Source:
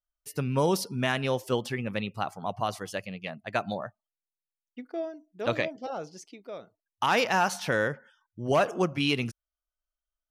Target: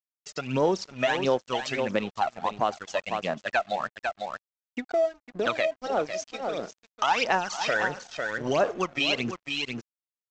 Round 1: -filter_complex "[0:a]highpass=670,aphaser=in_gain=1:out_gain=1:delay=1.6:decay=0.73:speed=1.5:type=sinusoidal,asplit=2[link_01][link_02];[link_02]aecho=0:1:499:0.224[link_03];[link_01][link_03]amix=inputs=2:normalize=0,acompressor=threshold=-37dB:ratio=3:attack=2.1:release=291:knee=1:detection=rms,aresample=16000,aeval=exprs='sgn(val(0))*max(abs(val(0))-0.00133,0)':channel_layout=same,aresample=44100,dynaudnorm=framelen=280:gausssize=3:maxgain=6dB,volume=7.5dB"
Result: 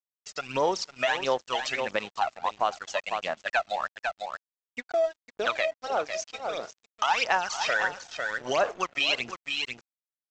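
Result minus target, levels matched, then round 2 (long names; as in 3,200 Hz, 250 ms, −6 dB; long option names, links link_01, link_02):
250 Hz band −8.5 dB
-filter_complex "[0:a]highpass=290,aphaser=in_gain=1:out_gain=1:delay=1.6:decay=0.73:speed=1.5:type=sinusoidal,asplit=2[link_01][link_02];[link_02]aecho=0:1:499:0.224[link_03];[link_01][link_03]amix=inputs=2:normalize=0,acompressor=threshold=-37dB:ratio=3:attack=2.1:release=291:knee=1:detection=rms,aresample=16000,aeval=exprs='sgn(val(0))*max(abs(val(0))-0.00133,0)':channel_layout=same,aresample=44100,dynaudnorm=framelen=280:gausssize=3:maxgain=6dB,volume=7.5dB"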